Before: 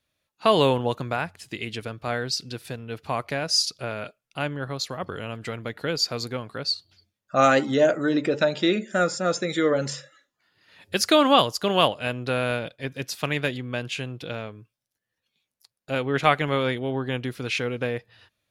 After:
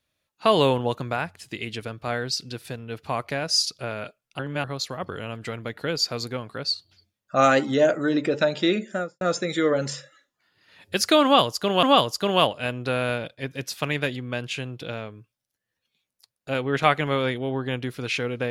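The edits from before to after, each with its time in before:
4.39–4.64 reverse
8.82–9.21 studio fade out
11.24–11.83 loop, 2 plays

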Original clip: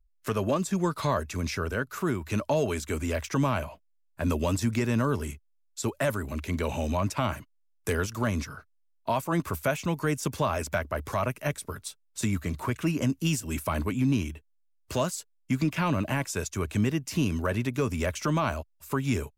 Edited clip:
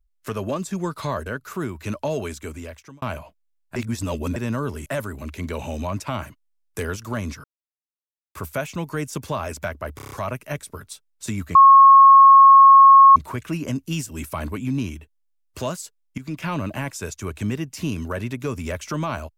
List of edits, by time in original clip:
1.26–1.72 cut
2.7–3.48 fade out
4.22–4.82 reverse
5.32–5.96 cut
8.54–9.45 mute
11.06 stutter 0.03 s, 6 plays
12.5 add tone 1090 Hz -6 dBFS 1.61 s
15.52–15.78 fade in, from -14.5 dB

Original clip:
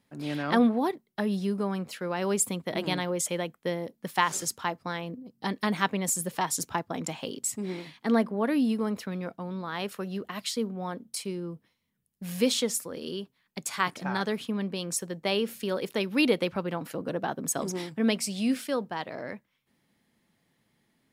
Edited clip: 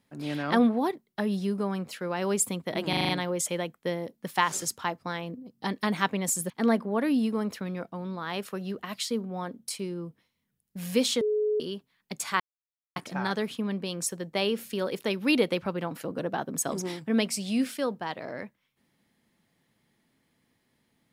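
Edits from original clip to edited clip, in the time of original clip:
2.89 stutter 0.04 s, 6 plays
6.3–7.96 cut
12.67–13.06 bleep 424 Hz -23 dBFS
13.86 insert silence 0.56 s

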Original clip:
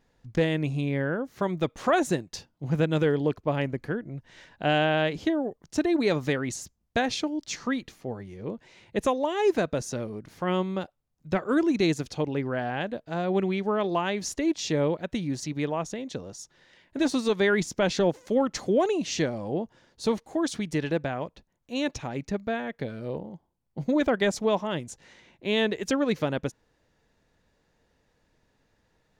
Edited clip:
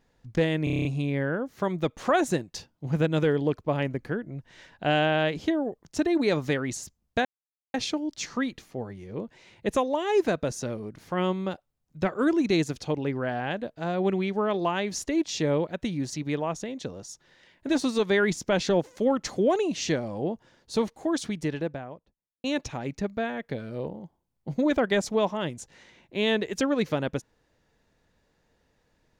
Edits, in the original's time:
0.64 stutter 0.03 s, 8 plays
7.04 insert silence 0.49 s
20.47–21.74 studio fade out

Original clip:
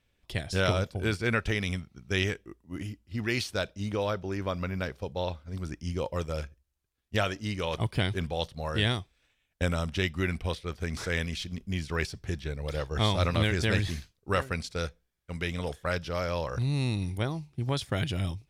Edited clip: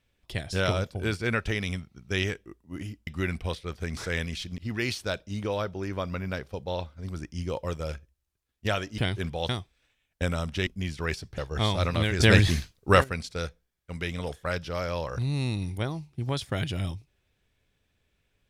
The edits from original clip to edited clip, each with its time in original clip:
7.47–7.95 cut
8.46–8.89 cut
10.07–11.58 move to 3.07
12.29–12.78 cut
13.6–14.44 gain +8.5 dB

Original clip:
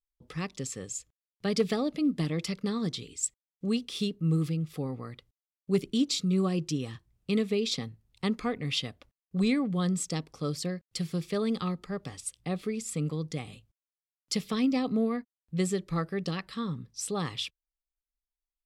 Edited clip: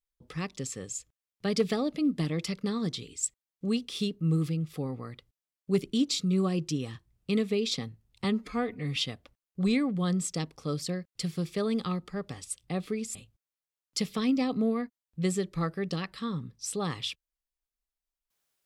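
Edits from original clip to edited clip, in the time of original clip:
8.24–8.72 stretch 1.5×
12.91–13.5 cut

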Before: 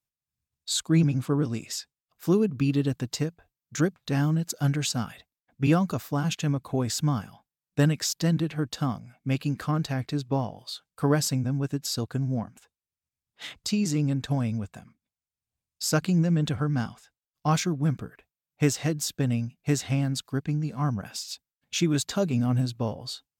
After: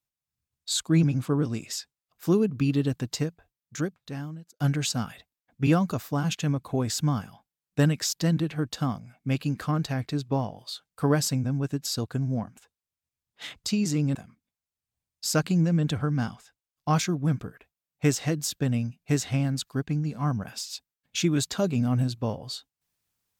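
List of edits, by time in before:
3.25–4.6 fade out
14.15–14.73 cut

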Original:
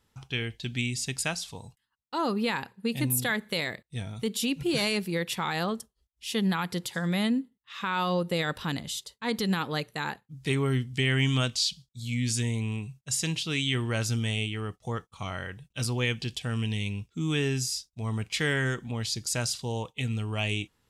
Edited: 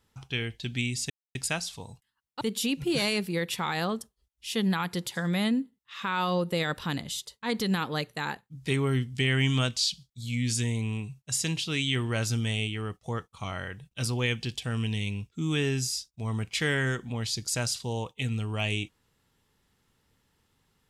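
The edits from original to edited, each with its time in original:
1.1 insert silence 0.25 s
2.16–4.2 cut

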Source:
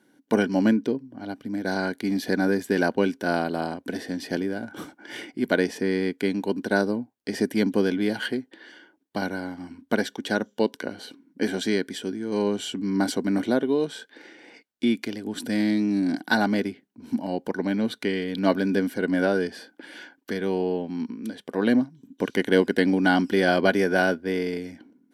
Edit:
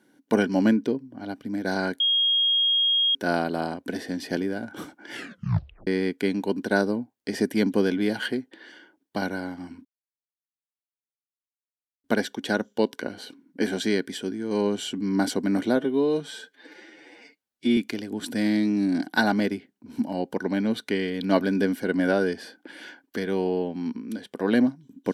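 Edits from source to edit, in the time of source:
2–3.15 bleep 3260 Hz -18.5 dBFS
5.13 tape stop 0.74 s
9.85 insert silence 2.19 s
13.57–14.91 stretch 1.5×

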